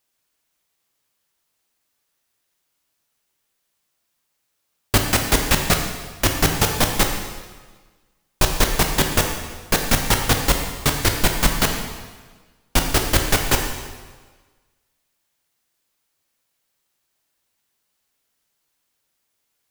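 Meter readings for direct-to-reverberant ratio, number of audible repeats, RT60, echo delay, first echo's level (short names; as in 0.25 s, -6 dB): 3.0 dB, none, 1.4 s, none, none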